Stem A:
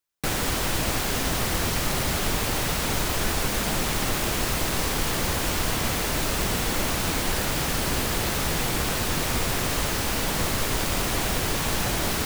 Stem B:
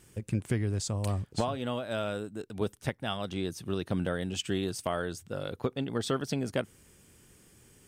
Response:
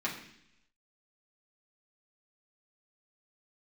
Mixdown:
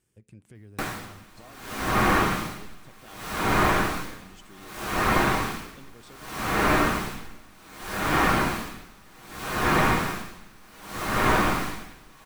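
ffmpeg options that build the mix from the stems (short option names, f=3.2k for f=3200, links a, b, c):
-filter_complex "[0:a]equalizer=f=1.2k:w=1.4:g=6,aeval=exprs='val(0)*pow(10,-35*(0.5-0.5*cos(2*PI*0.65*n/s))/20)':c=same,adelay=550,volume=1dB,asplit=2[a][b];[b]volume=-3dB[c];[1:a]alimiter=limit=-23.5dB:level=0:latency=1,volume=-17dB,asplit=2[d][e];[e]volume=-20.5dB[f];[2:a]atrim=start_sample=2205[g];[c][f]amix=inputs=2:normalize=0[h];[h][g]afir=irnorm=-1:irlink=0[i];[a][d][i]amix=inputs=3:normalize=0,acrossover=split=2500[j][k];[k]acompressor=threshold=-35dB:ratio=4:attack=1:release=60[l];[j][l]amix=inputs=2:normalize=0"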